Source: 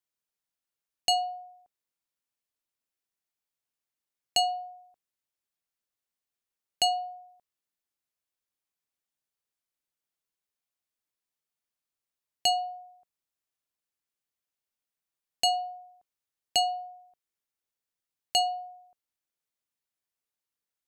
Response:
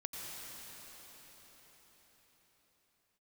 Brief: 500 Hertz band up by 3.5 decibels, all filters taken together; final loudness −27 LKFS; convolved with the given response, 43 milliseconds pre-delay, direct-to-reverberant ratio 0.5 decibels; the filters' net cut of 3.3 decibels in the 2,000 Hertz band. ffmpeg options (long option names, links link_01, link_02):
-filter_complex "[0:a]equalizer=frequency=500:width_type=o:gain=8.5,equalizer=frequency=2000:width_type=o:gain=-6,asplit=2[link_01][link_02];[1:a]atrim=start_sample=2205,adelay=43[link_03];[link_02][link_03]afir=irnorm=-1:irlink=0,volume=-1dB[link_04];[link_01][link_04]amix=inputs=2:normalize=0,volume=1.5dB"